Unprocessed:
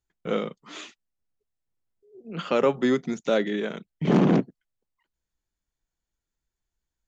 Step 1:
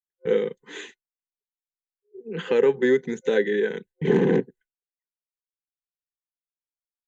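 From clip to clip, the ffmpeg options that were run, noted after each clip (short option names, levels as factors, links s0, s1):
-filter_complex "[0:a]agate=range=0.0224:threshold=0.00562:ratio=3:detection=peak,superequalizer=7b=3.16:8b=0.355:10b=0.398:11b=2.51:14b=0.355,asplit=2[s0][s1];[s1]acompressor=threshold=0.0794:ratio=6,volume=1[s2];[s0][s2]amix=inputs=2:normalize=0,volume=0.501"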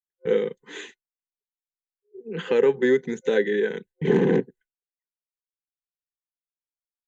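-af anull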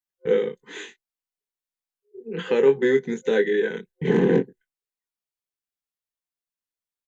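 -filter_complex "[0:a]asplit=2[s0][s1];[s1]adelay=22,volume=0.501[s2];[s0][s2]amix=inputs=2:normalize=0"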